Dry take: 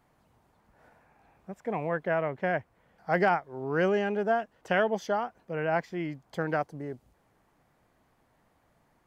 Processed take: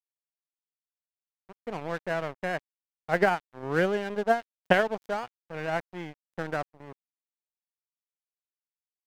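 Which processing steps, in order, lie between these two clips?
0:03.10–0:04.82: transient designer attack +9 dB, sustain −3 dB
tape wow and flutter 18 cents
dead-zone distortion −36 dBFS

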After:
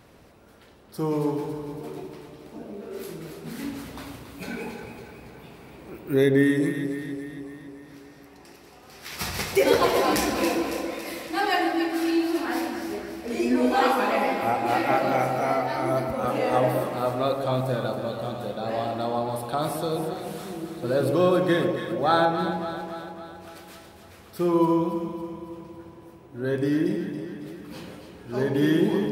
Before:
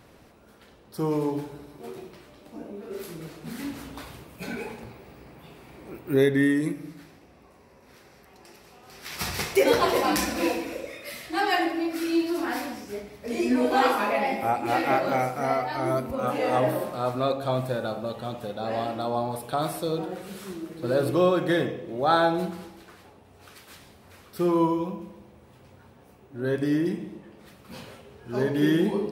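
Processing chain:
0:22.25–0:22.70: high-shelf EQ 4,500 Hz −9 dB
delay that swaps between a low-pass and a high-pass 139 ms, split 940 Hz, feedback 76%, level −6 dB

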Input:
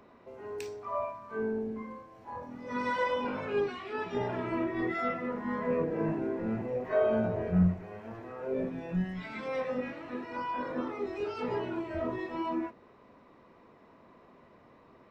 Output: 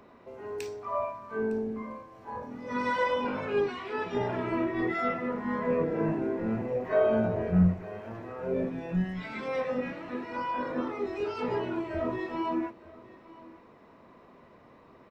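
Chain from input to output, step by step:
single-tap delay 908 ms −20.5 dB
level +2.5 dB

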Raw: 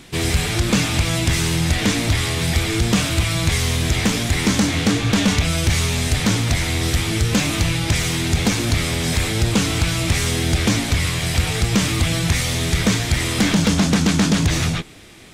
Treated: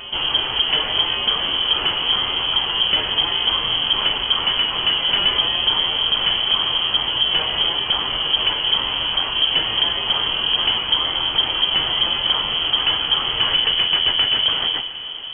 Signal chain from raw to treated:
backwards echo 1,150 ms −11.5 dB
on a send at −12 dB: convolution reverb RT60 6.3 s, pre-delay 86 ms
on the sum: voice inversion scrambler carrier 3,200 Hz
level −2 dB

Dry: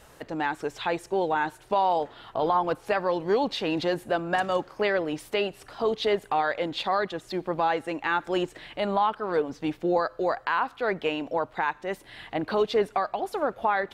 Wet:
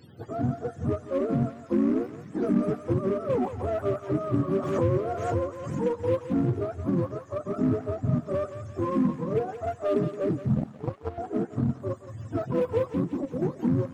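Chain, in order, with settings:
frequency axis turned over on the octave scale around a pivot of 460 Hz
in parallel at −11.5 dB: wave folding −30 dBFS
0:10.55–0:11.18: on the sum: power curve on the samples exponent 2
on a send: feedback echo with a high-pass in the loop 173 ms, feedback 61%, high-pass 1,000 Hz, level −6.5 dB
0:04.53–0:05.85: on the sum: background raised ahead of every attack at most 45 dB per second

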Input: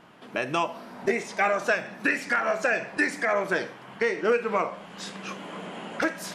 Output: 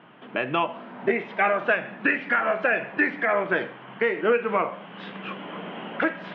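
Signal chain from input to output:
Chebyshev band-pass filter 120–3,200 Hz, order 4
level +2.5 dB

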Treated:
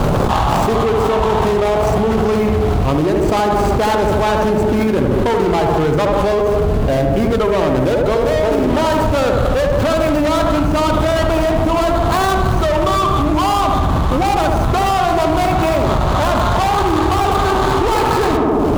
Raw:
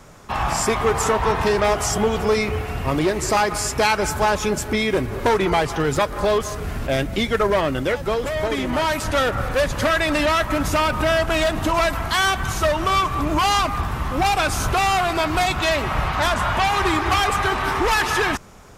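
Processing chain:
running median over 25 samples
on a send: tape delay 75 ms, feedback 76%, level −3 dB, low-pass 1,300 Hz
on the sum: envelope flattener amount 100%

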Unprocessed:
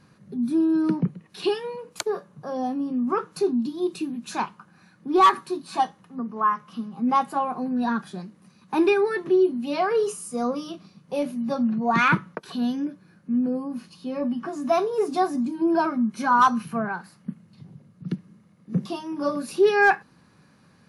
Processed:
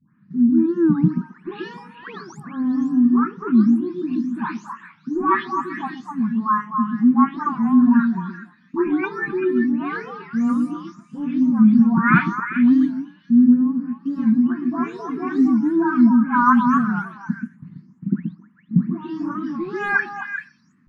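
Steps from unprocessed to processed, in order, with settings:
every frequency bin delayed by itself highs late, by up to 393 ms
noise gate −46 dBFS, range −10 dB
drawn EQ curve 110 Hz 0 dB, 180 Hz +7 dB, 260 Hz +10 dB, 570 Hz −27 dB, 1,000 Hz 0 dB, 1,800 Hz +5 dB, 2,700 Hz −8 dB, 4,300 Hz −14 dB, 6,500 Hz −10 dB, 9,300 Hz −24 dB
echo through a band-pass that steps 129 ms, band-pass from 320 Hz, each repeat 1.4 octaves, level −0.5 dB
wow of a warped record 45 rpm, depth 160 cents
level +1.5 dB

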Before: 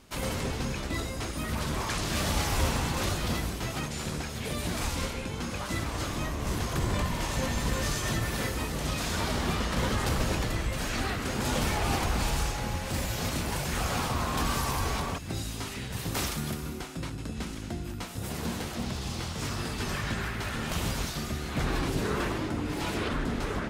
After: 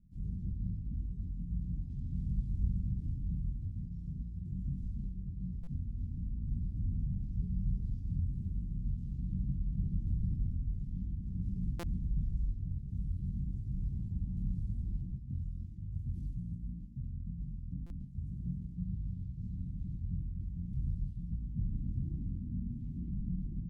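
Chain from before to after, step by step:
inverse Chebyshev low-pass filter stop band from 640 Hz, stop band 50 dB
low-shelf EQ 94 Hz +7.5 dB
double-tracking delay 17 ms −6.5 dB
single-tap delay 231 ms −19.5 dB
convolution reverb RT60 0.80 s, pre-delay 98 ms, DRR 16.5 dB
pitch shifter −4.5 semitones
spectral tilt +2 dB per octave
buffer that repeats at 0:05.63/0:11.79/0:17.86, samples 256, times 6

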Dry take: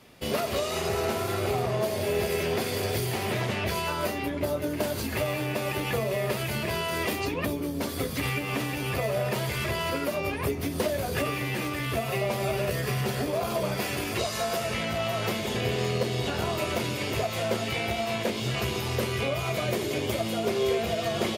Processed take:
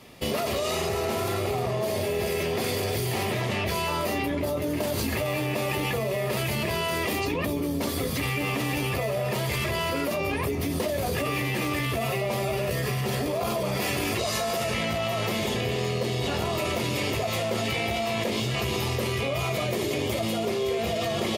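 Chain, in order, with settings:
notch filter 1,500 Hz, Q 8.6
in parallel at +2 dB: compressor whose output falls as the input rises −32 dBFS, ratio −1
on the sum: level −4 dB

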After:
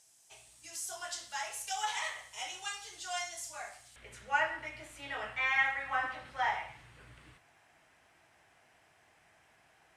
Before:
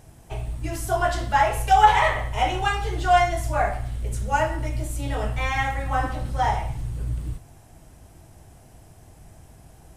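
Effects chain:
resonant band-pass 6,600 Hz, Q 1.5, from 0:03.96 2,000 Hz

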